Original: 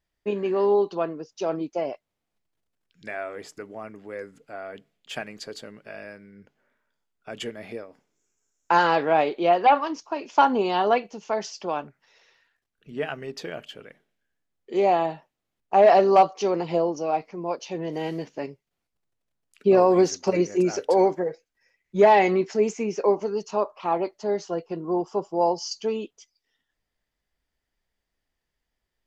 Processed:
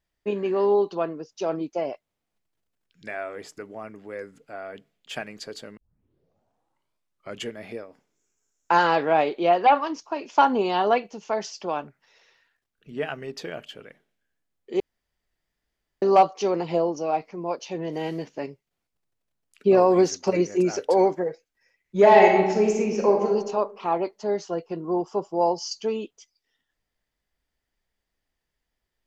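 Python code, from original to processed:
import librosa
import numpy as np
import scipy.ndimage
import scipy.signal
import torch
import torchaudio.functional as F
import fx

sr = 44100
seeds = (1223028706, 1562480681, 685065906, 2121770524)

y = fx.reverb_throw(x, sr, start_s=21.99, length_s=1.31, rt60_s=1.1, drr_db=1.0)
y = fx.edit(y, sr, fx.tape_start(start_s=5.77, length_s=1.68),
    fx.room_tone_fill(start_s=14.8, length_s=1.22), tone=tone)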